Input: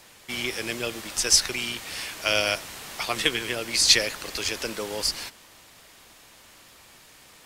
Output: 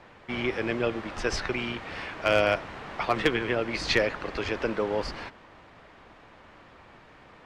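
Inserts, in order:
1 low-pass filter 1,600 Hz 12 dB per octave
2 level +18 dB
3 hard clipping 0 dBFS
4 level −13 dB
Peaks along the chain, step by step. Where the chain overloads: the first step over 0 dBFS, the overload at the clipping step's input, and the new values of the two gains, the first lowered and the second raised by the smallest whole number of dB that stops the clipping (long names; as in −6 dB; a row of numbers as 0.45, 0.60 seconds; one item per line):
−11.0, +7.0, 0.0, −13.0 dBFS
step 2, 7.0 dB
step 2 +11 dB, step 4 −6 dB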